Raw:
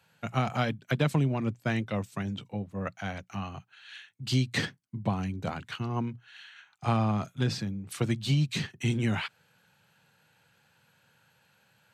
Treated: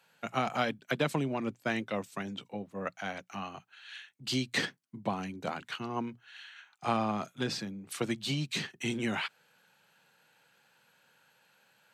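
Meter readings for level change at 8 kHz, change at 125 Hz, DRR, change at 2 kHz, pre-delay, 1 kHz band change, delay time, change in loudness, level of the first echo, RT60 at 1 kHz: 0.0 dB, −11.5 dB, no reverb audible, 0.0 dB, no reverb audible, 0.0 dB, no echo audible, −3.5 dB, no echo audible, no reverb audible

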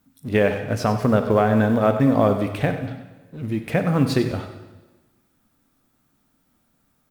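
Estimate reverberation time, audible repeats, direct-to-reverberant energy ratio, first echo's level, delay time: 1.2 s, 1, 6.5 dB, −12.5 dB, 96 ms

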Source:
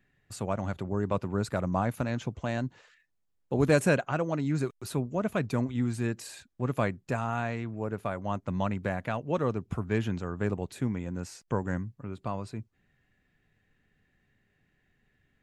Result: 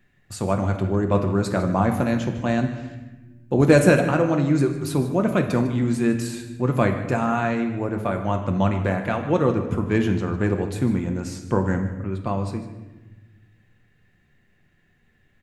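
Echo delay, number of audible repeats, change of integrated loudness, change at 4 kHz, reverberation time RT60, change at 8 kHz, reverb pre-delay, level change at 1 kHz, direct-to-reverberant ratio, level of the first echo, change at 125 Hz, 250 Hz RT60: 152 ms, 1, +9.0 dB, +7.0 dB, 1.2 s, +7.0 dB, 6 ms, +8.0 dB, 4.0 dB, −15.0 dB, +8.5 dB, 1.9 s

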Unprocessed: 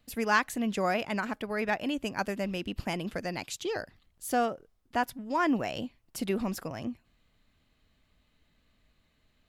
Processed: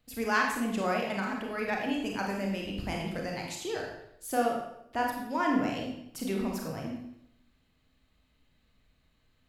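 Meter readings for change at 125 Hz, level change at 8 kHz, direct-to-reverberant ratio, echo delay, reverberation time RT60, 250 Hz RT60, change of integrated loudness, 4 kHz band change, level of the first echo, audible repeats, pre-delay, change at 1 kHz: +0.5 dB, −1.0 dB, −0.5 dB, no echo audible, 0.75 s, 0.80 s, −0.5 dB, −1.0 dB, no echo audible, no echo audible, 28 ms, −0.5 dB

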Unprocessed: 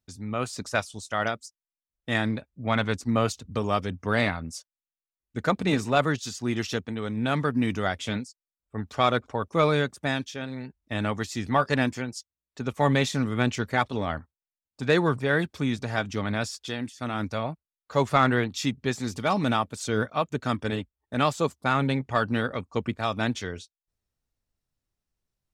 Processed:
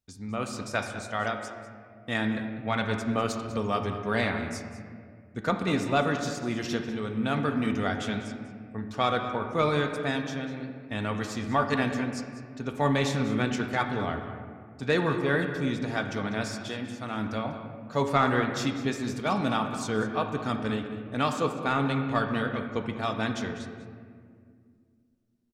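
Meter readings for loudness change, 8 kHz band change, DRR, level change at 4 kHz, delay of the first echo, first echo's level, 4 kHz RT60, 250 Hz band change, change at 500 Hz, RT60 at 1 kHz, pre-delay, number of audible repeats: −2.0 dB, −3.5 dB, 4.0 dB, −2.5 dB, 197 ms, −14.5 dB, 1.1 s, −1.0 dB, −2.0 dB, 1.9 s, 4 ms, 1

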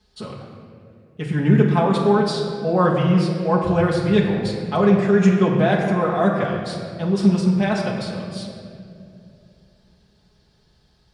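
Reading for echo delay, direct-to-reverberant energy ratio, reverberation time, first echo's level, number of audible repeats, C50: no echo audible, −6.0 dB, 2.5 s, no echo audible, no echo audible, 3.0 dB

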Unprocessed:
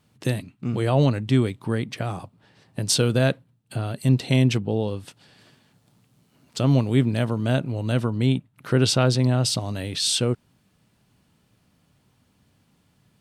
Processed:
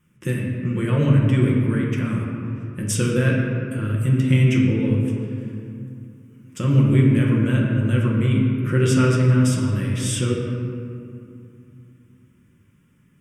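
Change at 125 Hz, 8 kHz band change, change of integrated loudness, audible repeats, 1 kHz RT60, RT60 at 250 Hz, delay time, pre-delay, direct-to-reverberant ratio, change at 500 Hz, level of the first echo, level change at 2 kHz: +5.0 dB, −2.0 dB, +3.0 dB, no echo audible, 2.5 s, 3.4 s, no echo audible, 5 ms, −3.0 dB, 0.0 dB, no echo audible, +3.5 dB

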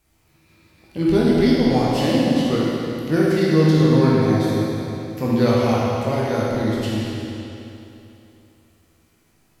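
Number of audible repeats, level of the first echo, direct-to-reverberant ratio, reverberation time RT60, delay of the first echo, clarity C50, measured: no echo audible, no echo audible, −7.0 dB, 3.0 s, no echo audible, −3.5 dB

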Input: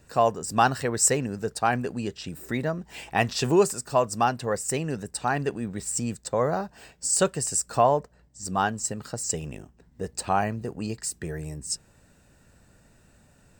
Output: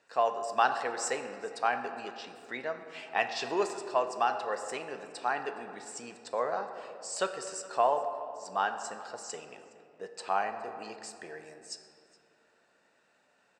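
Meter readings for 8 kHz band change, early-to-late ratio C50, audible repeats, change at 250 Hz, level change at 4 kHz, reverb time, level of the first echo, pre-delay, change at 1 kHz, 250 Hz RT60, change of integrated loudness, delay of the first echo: −15.0 dB, 8.5 dB, 1, −15.5 dB, −6.5 dB, 2.6 s, −23.0 dB, 4 ms, −4.0 dB, 3.2 s, −7.0 dB, 416 ms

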